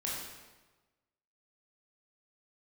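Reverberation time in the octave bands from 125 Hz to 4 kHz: 1.3 s, 1.2 s, 1.2 s, 1.2 s, 1.1 s, 0.95 s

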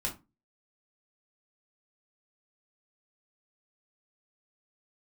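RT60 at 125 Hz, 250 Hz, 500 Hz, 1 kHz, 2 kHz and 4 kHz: 0.35 s, 0.35 s, 0.25 s, 0.25 s, 0.20 s, 0.15 s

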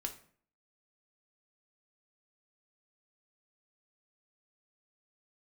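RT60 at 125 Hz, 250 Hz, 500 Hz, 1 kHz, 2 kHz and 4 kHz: 0.55 s, 0.60 s, 0.55 s, 0.50 s, 0.45 s, 0.35 s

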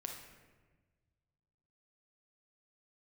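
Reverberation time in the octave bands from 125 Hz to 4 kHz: 2.4 s, 1.7 s, 1.5 s, 1.2 s, 1.2 s, 0.85 s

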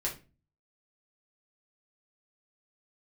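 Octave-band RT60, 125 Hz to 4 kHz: 0.65 s, 0.50 s, 0.35 s, 0.30 s, 0.30 s, 0.25 s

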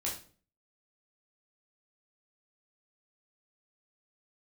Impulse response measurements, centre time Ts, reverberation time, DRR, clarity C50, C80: 30 ms, 0.45 s, -4.5 dB, 6.5 dB, 12.0 dB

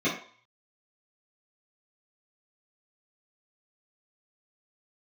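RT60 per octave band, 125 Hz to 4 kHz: 0.45 s, 0.35 s, 0.45 s, 0.55 s, 0.55 s, 0.50 s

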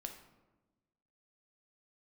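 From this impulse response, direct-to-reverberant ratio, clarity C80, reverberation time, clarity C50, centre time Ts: 3.5 dB, 10.5 dB, 1.2 s, 8.0 dB, 19 ms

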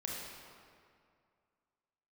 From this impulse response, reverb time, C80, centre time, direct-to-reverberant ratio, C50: 2.3 s, 1.0 dB, 118 ms, -3.5 dB, -1.0 dB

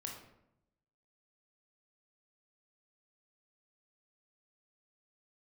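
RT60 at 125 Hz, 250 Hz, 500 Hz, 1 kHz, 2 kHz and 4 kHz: 1.1 s, 1.0 s, 0.85 s, 0.75 s, 0.65 s, 0.50 s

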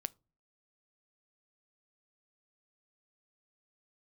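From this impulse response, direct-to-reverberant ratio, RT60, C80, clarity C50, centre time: 17.5 dB, no single decay rate, 34.5 dB, 27.5 dB, 1 ms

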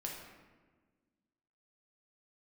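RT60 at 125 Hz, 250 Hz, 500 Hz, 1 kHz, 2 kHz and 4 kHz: 1.7 s, 2.1 s, 1.5 s, 1.3 s, 1.2 s, 0.85 s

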